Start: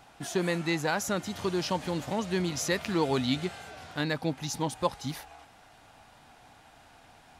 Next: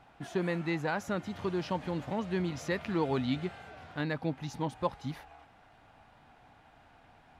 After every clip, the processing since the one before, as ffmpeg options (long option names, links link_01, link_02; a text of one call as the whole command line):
ffmpeg -i in.wav -af "bass=frequency=250:gain=2,treble=frequency=4000:gain=-14,volume=-3.5dB" out.wav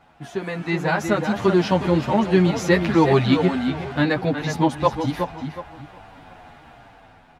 ffmpeg -i in.wav -filter_complex "[0:a]dynaudnorm=framelen=180:gausssize=9:maxgain=9dB,asplit=2[link_01][link_02];[link_02]adelay=367,lowpass=frequency=3500:poles=1,volume=-6.5dB,asplit=2[link_03][link_04];[link_04]adelay=367,lowpass=frequency=3500:poles=1,volume=0.29,asplit=2[link_05][link_06];[link_06]adelay=367,lowpass=frequency=3500:poles=1,volume=0.29,asplit=2[link_07][link_08];[link_08]adelay=367,lowpass=frequency=3500:poles=1,volume=0.29[link_09];[link_01][link_03][link_05][link_07][link_09]amix=inputs=5:normalize=0,asplit=2[link_10][link_11];[link_11]adelay=9,afreqshift=-1.1[link_12];[link_10][link_12]amix=inputs=2:normalize=1,volume=7.5dB" out.wav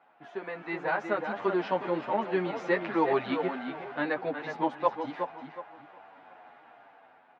ffmpeg -i in.wav -af "highpass=410,lowpass=2200,volume=-6dB" out.wav